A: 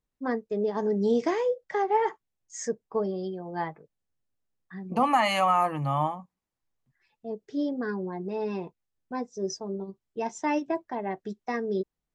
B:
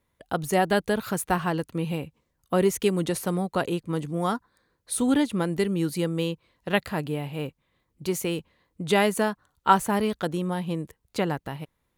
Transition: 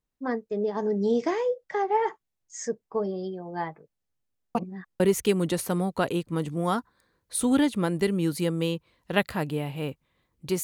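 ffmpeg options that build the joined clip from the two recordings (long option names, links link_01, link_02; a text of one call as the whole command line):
ffmpeg -i cue0.wav -i cue1.wav -filter_complex "[0:a]apad=whole_dur=10.63,atrim=end=10.63,asplit=2[link_01][link_02];[link_01]atrim=end=4.552[link_03];[link_02]atrim=start=4.548:end=5.002,asetpts=PTS-STARTPTS,areverse[link_04];[1:a]atrim=start=2.568:end=8.2[link_05];[link_03][link_04]acrossfade=duration=0.004:curve1=hsin:curve2=hsin[link_06];[link_06][link_05]acrossfade=duration=0.004:curve1=hsin:curve2=hsin" out.wav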